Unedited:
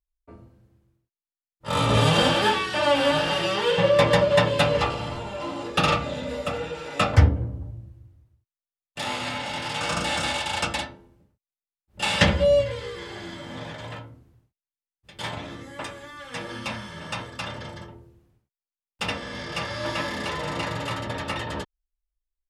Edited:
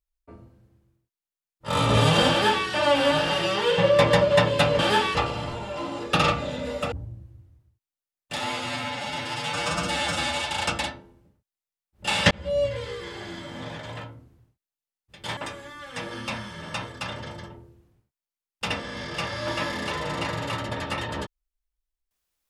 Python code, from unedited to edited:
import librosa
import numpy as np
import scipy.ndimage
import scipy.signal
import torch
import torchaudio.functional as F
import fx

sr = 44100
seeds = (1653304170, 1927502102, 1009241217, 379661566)

y = fx.edit(x, sr, fx.duplicate(start_s=2.31, length_s=0.36, to_s=4.79),
    fx.cut(start_s=6.56, length_s=1.02),
    fx.stretch_span(start_s=9.03, length_s=1.42, factor=1.5),
    fx.fade_in_span(start_s=12.26, length_s=0.51),
    fx.cut(start_s=15.32, length_s=0.43), tone=tone)